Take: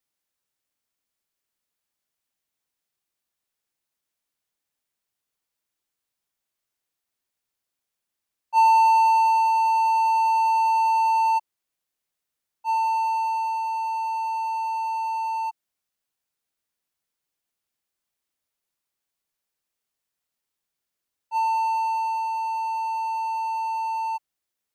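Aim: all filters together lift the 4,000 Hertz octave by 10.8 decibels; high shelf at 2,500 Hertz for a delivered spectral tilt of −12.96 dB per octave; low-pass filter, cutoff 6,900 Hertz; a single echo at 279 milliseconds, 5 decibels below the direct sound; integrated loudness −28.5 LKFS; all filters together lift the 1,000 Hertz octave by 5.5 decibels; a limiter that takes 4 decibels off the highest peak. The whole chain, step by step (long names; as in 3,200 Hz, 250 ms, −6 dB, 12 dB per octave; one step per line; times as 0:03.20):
low-pass filter 6,900 Hz
parametric band 1,000 Hz +5 dB
high-shelf EQ 2,500 Hz +7 dB
parametric band 4,000 Hz +6.5 dB
brickwall limiter −10 dBFS
single-tap delay 279 ms −5 dB
level −10.5 dB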